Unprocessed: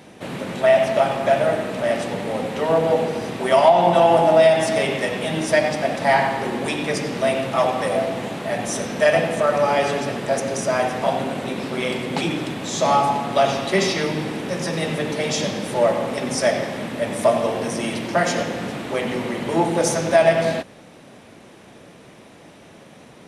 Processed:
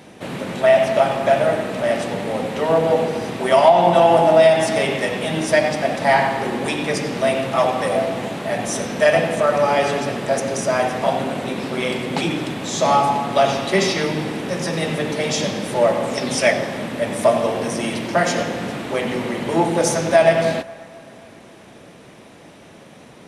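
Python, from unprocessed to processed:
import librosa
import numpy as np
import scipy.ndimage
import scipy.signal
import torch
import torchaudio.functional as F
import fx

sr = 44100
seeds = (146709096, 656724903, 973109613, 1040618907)

p1 = fx.peak_eq(x, sr, hz=fx.line((16.02, 9300.0), (16.52, 2000.0)), db=11.5, octaves=0.44, at=(16.02, 16.52), fade=0.02)
p2 = p1 + fx.echo_wet_bandpass(p1, sr, ms=268, feedback_pct=55, hz=1200.0, wet_db=-20.0, dry=0)
y = p2 * librosa.db_to_amplitude(1.5)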